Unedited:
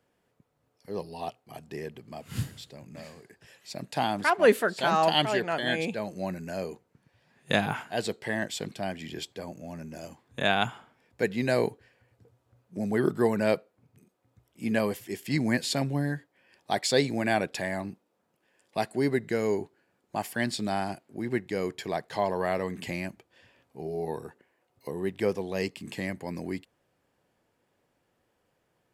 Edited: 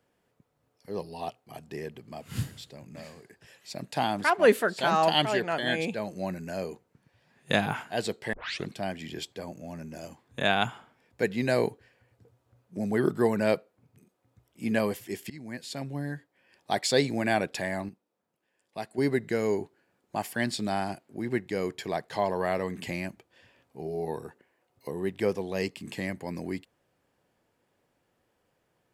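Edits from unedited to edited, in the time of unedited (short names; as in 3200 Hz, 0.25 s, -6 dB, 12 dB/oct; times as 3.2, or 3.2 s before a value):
8.33 tape start 0.33 s
15.3–16.73 fade in, from -21.5 dB
17.89–18.98 gain -7.5 dB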